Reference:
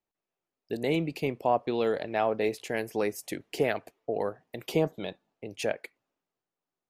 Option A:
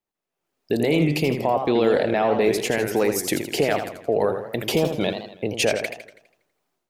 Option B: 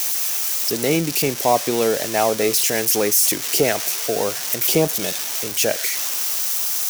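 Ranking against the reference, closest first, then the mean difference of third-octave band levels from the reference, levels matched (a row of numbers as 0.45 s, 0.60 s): A, B; 7.0 dB, 12.0 dB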